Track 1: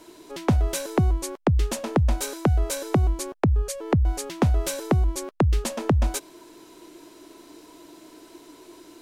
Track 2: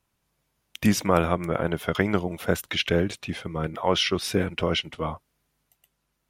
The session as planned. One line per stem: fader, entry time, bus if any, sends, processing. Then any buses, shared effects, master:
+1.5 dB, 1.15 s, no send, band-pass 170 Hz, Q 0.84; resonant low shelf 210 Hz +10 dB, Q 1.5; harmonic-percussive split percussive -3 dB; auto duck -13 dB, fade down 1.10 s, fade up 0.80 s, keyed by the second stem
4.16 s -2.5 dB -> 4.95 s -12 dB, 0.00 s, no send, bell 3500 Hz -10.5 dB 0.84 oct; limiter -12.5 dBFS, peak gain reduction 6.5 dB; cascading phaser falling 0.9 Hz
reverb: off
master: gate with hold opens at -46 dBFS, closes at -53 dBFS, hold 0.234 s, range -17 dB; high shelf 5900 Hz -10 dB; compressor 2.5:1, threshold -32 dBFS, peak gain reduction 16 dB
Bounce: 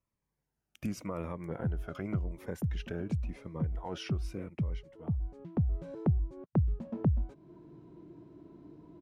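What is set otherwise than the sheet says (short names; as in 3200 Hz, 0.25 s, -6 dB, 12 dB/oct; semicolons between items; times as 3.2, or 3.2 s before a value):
stem 2 -2.5 dB -> -9.5 dB; master: missing gate with hold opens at -46 dBFS, closes at -53 dBFS, hold 0.234 s, range -17 dB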